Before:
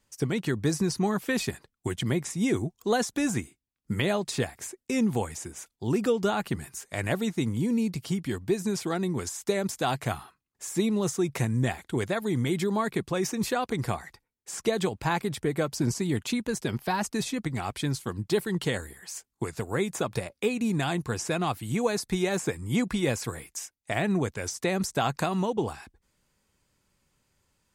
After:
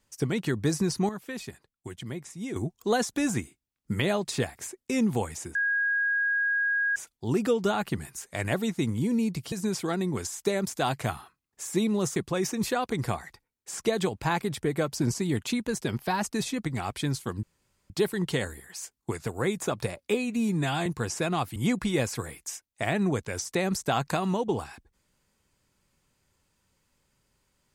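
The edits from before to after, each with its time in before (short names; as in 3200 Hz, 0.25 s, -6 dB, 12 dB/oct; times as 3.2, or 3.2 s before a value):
1.09–2.56 gain -9.5 dB
5.55 add tone 1640 Hz -23 dBFS 1.41 s
8.11–8.54 cut
11.18–12.96 cut
18.23 insert room tone 0.47 s
20.47–20.95 stretch 1.5×
21.65–22.65 cut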